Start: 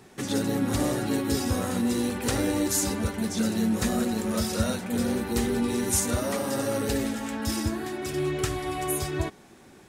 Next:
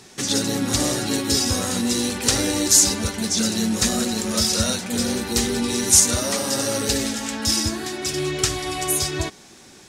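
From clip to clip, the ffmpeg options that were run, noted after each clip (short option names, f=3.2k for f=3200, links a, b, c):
-af "equalizer=f=5.6k:t=o:w=1.9:g=13.5,volume=2dB"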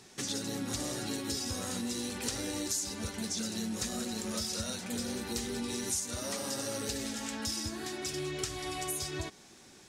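-af "acompressor=threshold=-24dB:ratio=4,volume=-9dB"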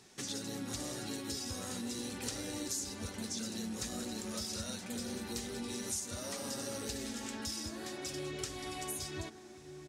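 -filter_complex "[0:a]asplit=2[a][b];[b]adelay=1516,volume=-8dB,highshelf=f=4k:g=-34.1[c];[a][c]amix=inputs=2:normalize=0,volume=-4.5dB"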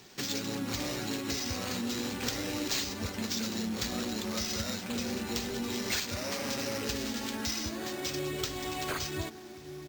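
-af "acrusher=samples=4:mix=1:aa=0.000001,volume=6dB"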